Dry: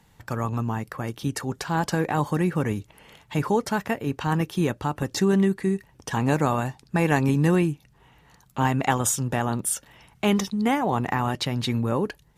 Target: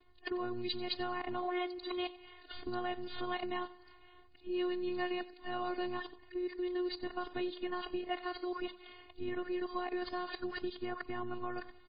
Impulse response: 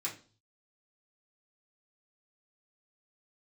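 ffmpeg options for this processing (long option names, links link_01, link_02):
-filter_complex "[0:a]areverse,acrossover=split=4200[link_01][link_02];[link_01]acompressor=threshold=-30dB:ratio=6[link_03];[link_02]aeval=exprs='(tanh(22.4*val(0)+0.25)-tanh(0.25))/22.4':channel_layout=same[link_04];[link_03][link_04]amix=inputs=2:normalize=0,afftfilt=real='hypot(re,im)*cos(PI*b)':imag='0':win_size=512:overlap=0.75,asplit=2[link_05][link_06];[link_06]aecho=0:1:96|192|288|384:0.126|0.0604|0.029|0.0139[link_07];[link_05][link_07]amix=inputs=2:normalize=0,asetrate=45938,aresample=44100,volume=1dB" -ar 11025 -c:a libmp3lame -b:a 16k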